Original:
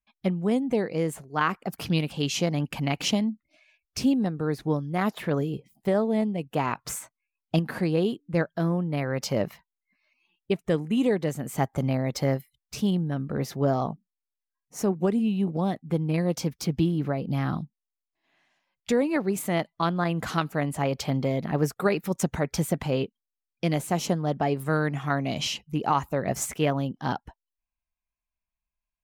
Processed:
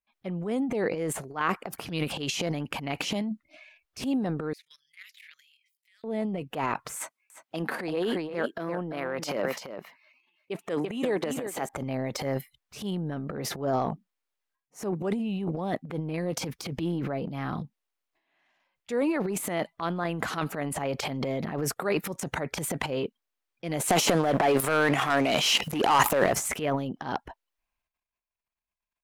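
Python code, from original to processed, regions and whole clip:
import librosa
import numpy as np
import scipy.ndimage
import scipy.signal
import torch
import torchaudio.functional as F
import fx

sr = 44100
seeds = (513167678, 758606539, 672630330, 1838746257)

y = fx.chain(x, sr, fx.ellip_highpass(hz=2100.0, order=4, stop_db=60),
    fx.level_steps(step_db=20), at=(4.53, 6.04))
y = fx.chain(y, sr, fx.highpass(hz=230.0, slope=12),
    fx.echo_single(ms=340, db=-10.0), at=(6.96, 11.69))
y = fx.chain(y, sr, fx.highpass(hz=470.0, slope=6),
    fx.leveller(passes=3),
    fx.pre_swell(db_per_s=120.0), at=(23.82, 26.33))
y = fx.dynamic_eq(y, sr, hz=9800.0, q=0.72, threshold_db=-52.0, ratio=4.0, max_db=8)
y = fx.transient(y, sr, attack_db=-7, sustain_db=12)
y = fx.bass_treble(y, sr, bass_db=-8, treble_db=-8)
y = y * 10.0 ** (-1.5 / 20.0)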